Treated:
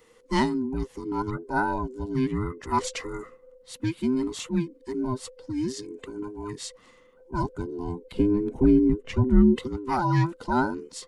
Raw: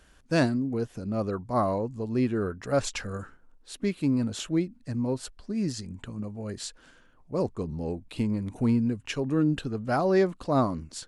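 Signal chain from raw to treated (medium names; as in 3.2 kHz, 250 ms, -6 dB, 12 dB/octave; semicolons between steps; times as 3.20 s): every band turned upside down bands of 500 Hz; 8.12–9.56 s: tilt EQ -3 dB/octave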